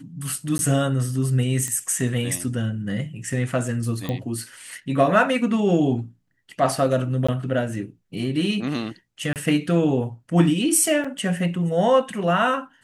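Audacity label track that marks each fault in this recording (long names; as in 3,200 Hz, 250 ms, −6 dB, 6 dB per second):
0.580000	0.590000	drop-out 11 ms
1.680000	1.680000	click −14 dBFS
4.090000	4.090000	click −15 dBFS
7.270000	7.290000	drop-out 15 ms
9.330000	9.360000	drop-out 28 ms
11.040000	11.040000	drop-out 5 ms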